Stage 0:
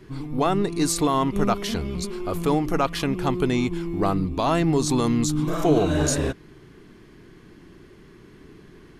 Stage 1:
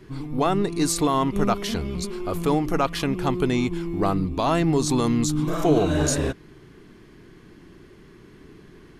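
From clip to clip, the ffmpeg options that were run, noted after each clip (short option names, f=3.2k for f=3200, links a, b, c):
-af anull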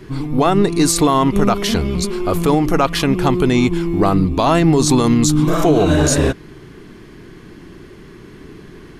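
-af "alimiter=level_in=13dB:limit=-1dB:release=50:level=0:latency=1,volume=-3.5dB"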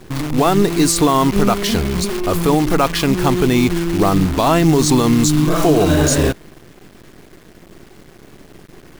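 -af "acrusher=bits=5:dc=4:mix=0:aa=0.000001"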